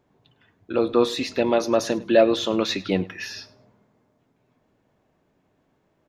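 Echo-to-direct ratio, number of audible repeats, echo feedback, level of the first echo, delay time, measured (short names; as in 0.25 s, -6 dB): -21.0 dB, 2, 21%, -21.0 dB, 0.103 s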